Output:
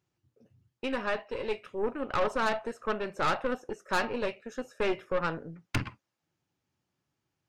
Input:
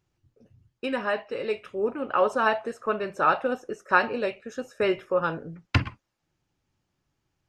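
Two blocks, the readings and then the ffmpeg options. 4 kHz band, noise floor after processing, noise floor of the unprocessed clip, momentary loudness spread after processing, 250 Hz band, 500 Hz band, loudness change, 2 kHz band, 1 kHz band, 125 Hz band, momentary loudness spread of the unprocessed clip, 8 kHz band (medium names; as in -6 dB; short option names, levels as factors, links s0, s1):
-2.0 dB, -85 dBFS, -79 dBFS, 8 LU, -3.5 dB, -5.0 dB, -5.5 dB, -6.0 dB, -6.0 dB, -7.0 dB, 10 LU, no reading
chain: -af "highpass=100,aeval=exprs='(tanh(14.1*val(0)+0.7)-tanh(0.7))/14.1':c=same"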